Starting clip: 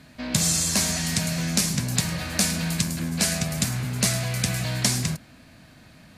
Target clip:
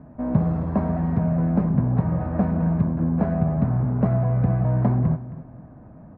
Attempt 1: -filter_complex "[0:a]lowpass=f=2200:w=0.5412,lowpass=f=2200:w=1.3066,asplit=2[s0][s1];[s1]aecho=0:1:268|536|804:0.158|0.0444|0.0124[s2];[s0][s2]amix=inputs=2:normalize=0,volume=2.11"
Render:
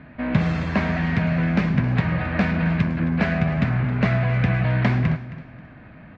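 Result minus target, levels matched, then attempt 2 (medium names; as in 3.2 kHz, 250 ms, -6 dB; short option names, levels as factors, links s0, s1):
2 kHz band +18.0 dB
-filter_complex "[0:a]lowpass=f=990:w=0.5412,lowpass=f=990:w=1.3066,asplit=2[s0][s1];[s1]aecho=0:1:268|536|804:0.158|0.0444|0.0124[s2];[s0][s2]amix=inputs=2:normalize=0,volume=2.11"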